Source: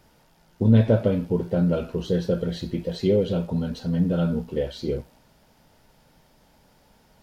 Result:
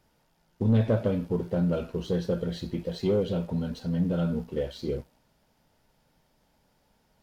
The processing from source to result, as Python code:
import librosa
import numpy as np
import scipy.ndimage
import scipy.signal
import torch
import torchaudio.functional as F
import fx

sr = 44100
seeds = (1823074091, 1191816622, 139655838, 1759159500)

y = fx.leveller(x, sr, passes=1)
y = y * 10.0 ** (-7.5 / 20.0)